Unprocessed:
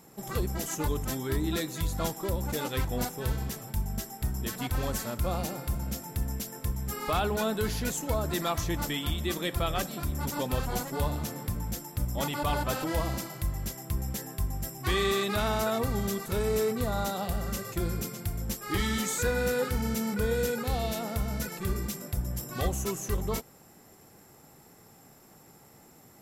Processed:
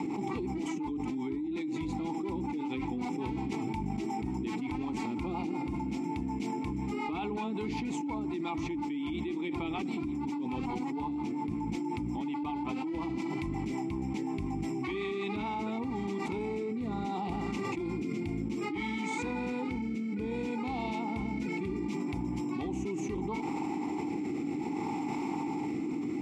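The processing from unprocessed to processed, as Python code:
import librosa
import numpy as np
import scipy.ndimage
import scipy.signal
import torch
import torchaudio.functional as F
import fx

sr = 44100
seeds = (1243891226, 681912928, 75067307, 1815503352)

y = scipy.signal.sosfilt(scipy.signal.butter(4, 9300.0, 'lowpass', fs=sr, output='sos'), x)
y = fx.rotary_switch(y, sr, hz=5.5, then_hz=0.65, switch_at_s=15.03)
y = fx.vowel_filter(y, sr, vowel='u')
y = fx.env_flatten(y, sr, amount_pct=100)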